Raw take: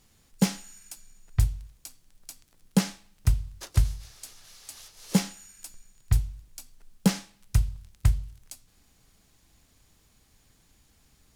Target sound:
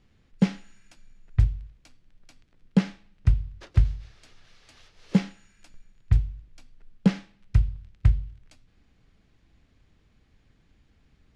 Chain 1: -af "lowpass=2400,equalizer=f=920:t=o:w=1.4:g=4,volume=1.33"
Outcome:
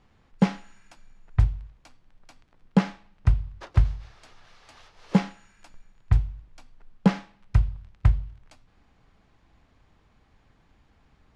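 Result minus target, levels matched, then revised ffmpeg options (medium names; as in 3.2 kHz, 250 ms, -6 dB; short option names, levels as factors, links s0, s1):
1 kHz band +9.0 dB
-af "lowpass=2400,equalizer=f=920:t=o:w=1.4:g=-6.5,volume=1.33"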